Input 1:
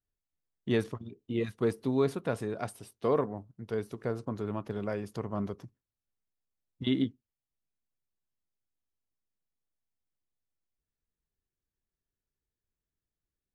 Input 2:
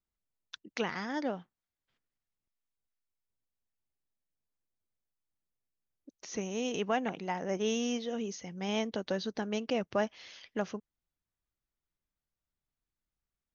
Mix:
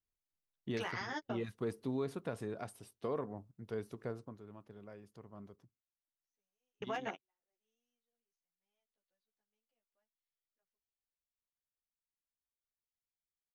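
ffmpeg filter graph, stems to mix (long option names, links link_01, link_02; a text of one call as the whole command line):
ffmpeg -i stem1.wav -i stem2.wav -filter_complex "[0:a]volume=-6.5dB,afade=type=out:start_time=4:duration=0.39:silence=0.251189,asplit=2[link_01][link_02];[1:a]highpass=frequency=690:poles=1,aeval=exprs='clip(val(0),-1,0.0473)':channel_layout=same,asplit=2[link_03][link_04];[link_04]adelay=11.5,afreqshift=0.43[link_05];[link_03][link_05]amix=inputs=2:normalize=1,volume=2.5dB[link_06];[link_02]apad=whole_len=597790[link_07];[link_06][link_07]sidechaingate=range=-54dB:threshold=-56dB:ratio=16:detection=peak[link_08];[link_01][link_08]amix=inputs=2:normalize=0,alimiter=level_in=4dB:limit=-24dB:level=0:latency=1:release=109,volume=-4dB" out.wav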